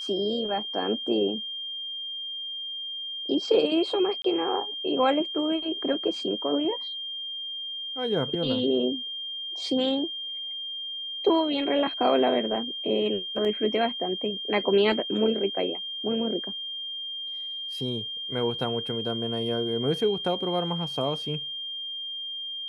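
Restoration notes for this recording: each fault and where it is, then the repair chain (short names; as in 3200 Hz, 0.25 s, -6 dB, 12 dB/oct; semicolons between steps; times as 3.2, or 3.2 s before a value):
tone 3200 Hz -32 dBFS
4.22–4.24 gap 23 ms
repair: notch 3200 Hz, Q 30; interpolate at 4.22, 23 ms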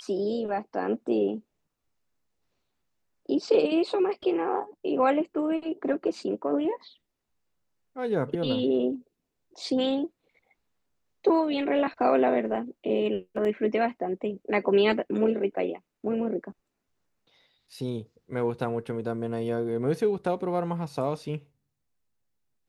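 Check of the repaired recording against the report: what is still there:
none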